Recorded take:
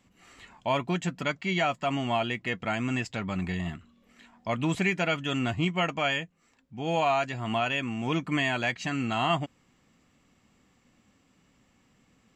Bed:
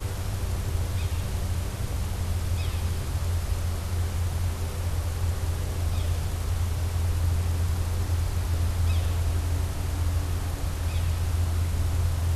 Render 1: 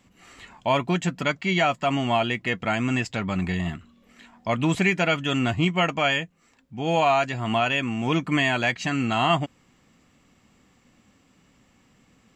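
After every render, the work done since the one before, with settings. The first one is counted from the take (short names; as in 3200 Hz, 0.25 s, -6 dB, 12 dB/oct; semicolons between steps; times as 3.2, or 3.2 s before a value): gain +5 dB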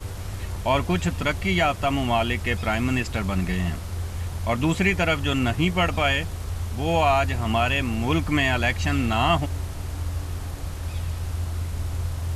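add bed -2.5 dB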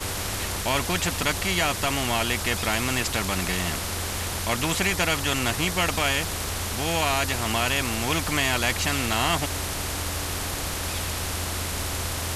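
spectral compressor 2:1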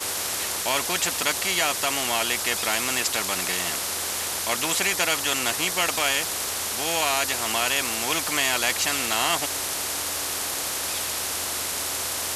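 HPF 160 Hz 6 dB/oct; tone controls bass -10 dB, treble +5 dB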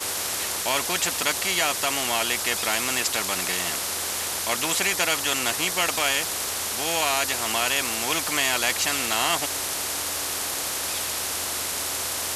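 nothing audible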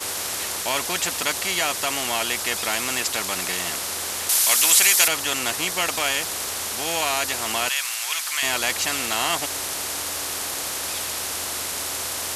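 4.29–5.08 tilt +3.5 dB/oct; 7.69–8.43 HPF 1300 Hz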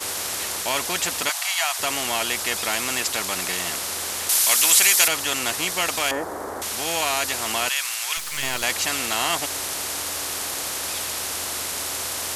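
1.29–1.79 steep high-pass 640 Hz 72 dB/oct; 6.11–6.62 EQ curve 180 Hz 0 dB, 270 Hz +9 dB, 900 Hz +6 dB, 1800 Hz -3 dB, 2600 Hz -20 dB, 15000 Hz -14 dB; 8.17–8.63 half-wave gain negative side -12 dB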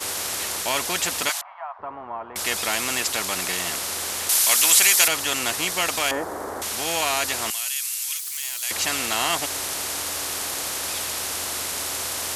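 1.41–2.36 ladder low-pass 1200 Hz, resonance 50%; 7.5–8.71 differentiator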